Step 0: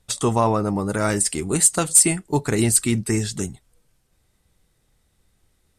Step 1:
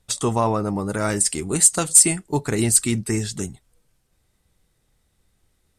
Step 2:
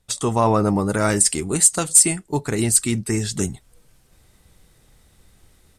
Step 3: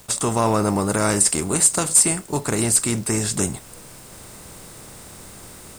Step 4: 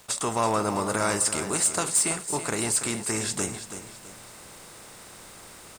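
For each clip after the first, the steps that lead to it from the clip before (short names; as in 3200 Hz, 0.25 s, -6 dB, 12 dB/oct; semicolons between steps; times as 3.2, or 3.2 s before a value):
dynamic EQ 6500 Hz, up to +4 dB, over -29 dBFS, Q 0.85; gain -1.5 dB
AGC gain up to 13 dB; gain -1 dB
per-bin compression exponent 0.6; bit-crush 7-bit; gain -3.5 dB
overdrive pedal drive 9 dB, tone 5500 Hz, clips at -3 dBFS; feedback echo 0.329 s, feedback 37%, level -10.5 dB; gain -6.5 dB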